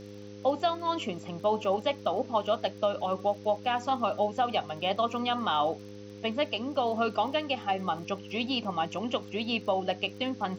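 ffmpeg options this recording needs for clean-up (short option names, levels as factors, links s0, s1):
-af "adeclick=t=4,bandreject=f=102.1:t=h:w=4,bandreject=f=204.2:t=h:w=4,bandreject=f=306.3:t=h:w=4,bandreject=f=408.4:t=h:w=4,bandreject=f=510.5:t=h:w=4,afftdn=nr=30:nf=-45"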